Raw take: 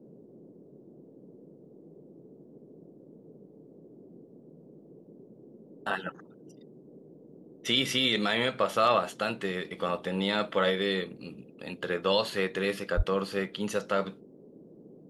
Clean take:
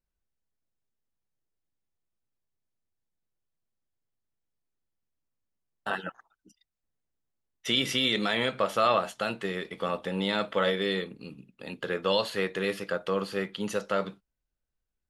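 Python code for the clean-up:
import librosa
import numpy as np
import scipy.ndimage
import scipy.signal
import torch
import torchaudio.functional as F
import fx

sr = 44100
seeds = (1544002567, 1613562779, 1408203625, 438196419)

y = fx.fix_declip(x, sr, threshold_db=-13.5)
y = fx.fix_deplosive(y, sr, at_s=(12.96,))
y = fx.noise_reduce(y, sr, print_start_s=4.25, print_end_s=4.75, reduce_db=29.0)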